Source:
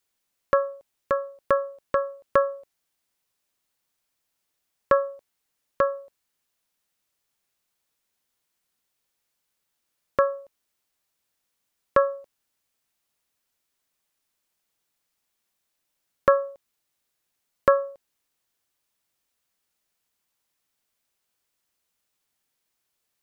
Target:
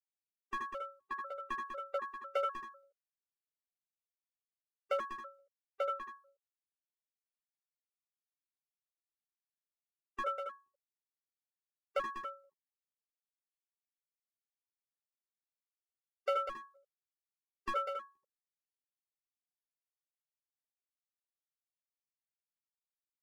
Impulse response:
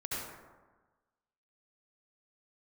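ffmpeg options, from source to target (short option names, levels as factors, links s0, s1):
-filter_complex "[0:a]agate=range=0.0224:threshold=0.0158:ratio=3:detection=peak,lowshelf=f=280:g=-7,acrossover=split=110[s0][s1];[s1]asoftclip=type=hard:threshold=0.178[s2];[s0][s2]amix=inputs=2:normalize=0,asplit=2[s3][s4];[s4]adelay=12,volume=0.75[s5];[s3][s5]amix=inputs=2:normalize=0,aecho=1:1:196:0.422[s6];[1:a]atrim=start_sample=2205,atrim=end_sample=3087,asetrate=37926,aresample=44100[s7];[s6][s7]afir=irnorm=-1:irlink=0,afftfilt=real='re*gt(sin(2*PI*2*pts/sr)*(1-2*mod(floor(b*sr/1024/390),2)),0)':imag='im*gt(sin(2*PI*2*pts/sr)*(1-2*mod(floor(b*sr/1024/390),2)),0)':win_size=1024:overlap=0.75,volume=0.473"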